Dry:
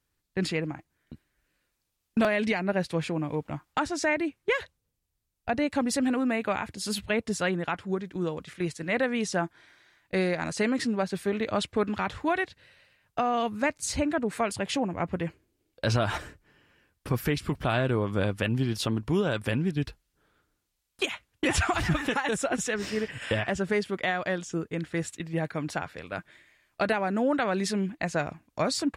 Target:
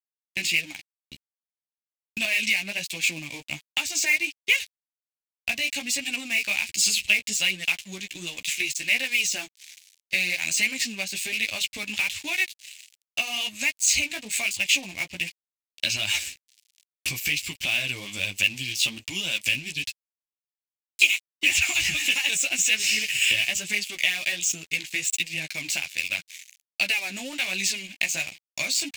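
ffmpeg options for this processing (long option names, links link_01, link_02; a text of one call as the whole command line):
ffmpeg -i in.wav -filter_complex "[0:a]acrossover=split=2900[link_01][link_02];[link_02]acompressor=threshold=-41dB:ratio=4:attack=1:release=60[link_03];[link_01][link_03]amix=inputs=2:normalize=0,superequalizer=7b=0.501:12b=2.51:15b=2:16b=0.562,acompressor=threshold=-37dB:ratio=2.5,flanger=delay=9.8:depth=6.3:regen=-8:speed=1.3:shape=triangular,aeval=exprs='sgn(val(0))*max(abs(val(0))-0.00158,0)':channel_layout=same,aexciter=amount=15.6:drive=5.9:freq=2100" out.wav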